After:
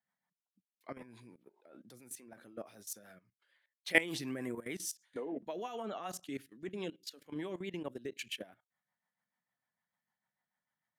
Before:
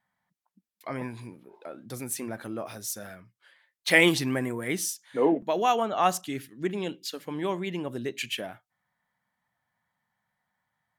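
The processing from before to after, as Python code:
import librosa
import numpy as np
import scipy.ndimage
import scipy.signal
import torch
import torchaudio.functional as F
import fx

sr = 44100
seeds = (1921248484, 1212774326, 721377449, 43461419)

y = scipy.signal.sosfilt(scipy.signal.butter(2, 160.0, 'highpass', fs=sr, output='sos'), x)
y = fx.level_steps(y, sr, step_db=17)
y = fx.rotary(y, sr, hz=6.7)
y = y * librosa.db_to_amplitude(-3.5)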